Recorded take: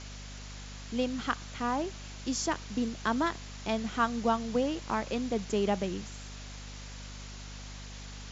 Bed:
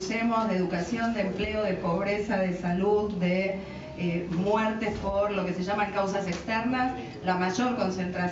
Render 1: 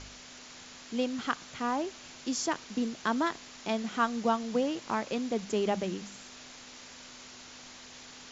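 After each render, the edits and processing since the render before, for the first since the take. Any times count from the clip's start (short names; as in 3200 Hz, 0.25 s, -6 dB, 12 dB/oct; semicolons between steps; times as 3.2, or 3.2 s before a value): de-hum 50 Hz, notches 4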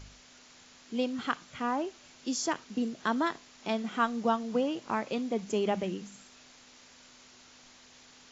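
noise print and reduce 7 dB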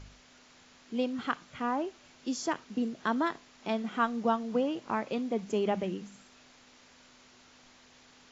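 high shelf 4400 Hz -8 dB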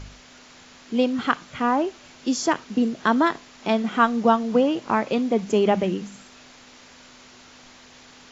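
gain +10 dB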